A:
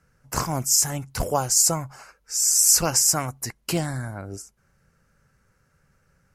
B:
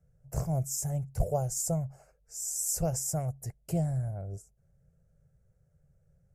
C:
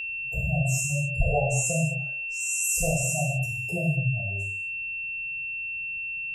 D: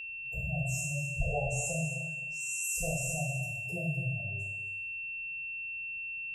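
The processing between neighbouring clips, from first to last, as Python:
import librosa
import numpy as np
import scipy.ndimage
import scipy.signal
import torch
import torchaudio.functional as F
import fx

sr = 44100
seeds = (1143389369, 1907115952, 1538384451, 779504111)

y1 = fx.curve_eq(x, sr, hz=(160.0, 260.0, 420.0, 660.0, 1000.0, 2000.0, 2900.0, 4100.0, 7300.0), db=(0, -20, -8, -3, -24, -22, -25, -27, -14))
y2 = fx.spec_gate(y1, sr, threshold_db=-15, keep='strong')
y2 = fx.rev_gated(y2, sr, seeds[0], gate_ms=280, shape='falling', drr_db=-5.0)
y2 = y2 + 10.0 ** (-30.0 / 20.0) * np.sin(2.0 * np.pi * 2700.0 * np.arange(len(y2)) / sr)
y3 = fx.echo_feedback(y2, sr, ms=260, feedback_pct=17, wet_db=-11.5)
y3 = y3 * 10.0 ** (-8.5 / 20.0)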